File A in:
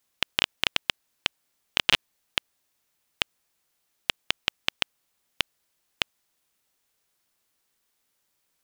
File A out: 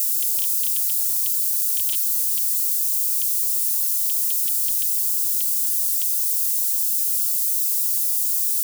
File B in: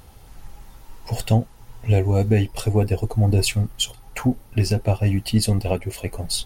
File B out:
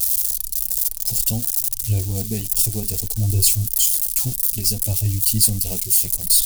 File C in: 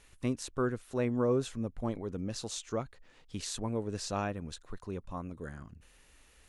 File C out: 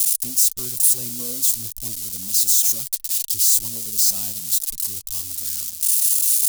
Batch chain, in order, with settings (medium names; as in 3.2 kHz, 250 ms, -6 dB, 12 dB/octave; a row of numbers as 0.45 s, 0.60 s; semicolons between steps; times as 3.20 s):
zero-crossing glitches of -14.5 dBFS; FFT filter 110 Hz 0 dB, 520 Hz -13 dB, 1 kHz -14 dB, 1.7 kHz -17 dB, 4.6 kHz +2 dB, 9.3 kHz +7 dB; flange 0.58 Hz, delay 2.3 ms, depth 3.8 ms, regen -24%; normalise loudness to -18 LUFS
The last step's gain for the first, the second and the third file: -6.0 dB, +2.5 dB, +3.0 dB